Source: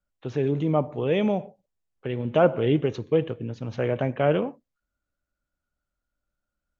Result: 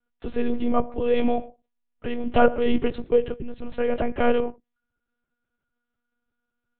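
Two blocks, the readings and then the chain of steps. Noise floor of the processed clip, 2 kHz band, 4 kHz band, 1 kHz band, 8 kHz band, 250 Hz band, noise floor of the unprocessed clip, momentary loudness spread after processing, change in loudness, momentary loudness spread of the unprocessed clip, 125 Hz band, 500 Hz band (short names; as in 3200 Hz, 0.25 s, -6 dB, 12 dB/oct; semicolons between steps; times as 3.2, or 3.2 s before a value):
-83 dBFS, +3.0 dB, +0.5 dB, +4.0 dB, n/a, +1.0 dB, -85 dBFS, 13 LU, +0.5 dB, 12 LU, -12.0 dB, +0.5 dB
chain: monotone LPC vocoder at 8 kHz 240 Hz; gain +2.5 dB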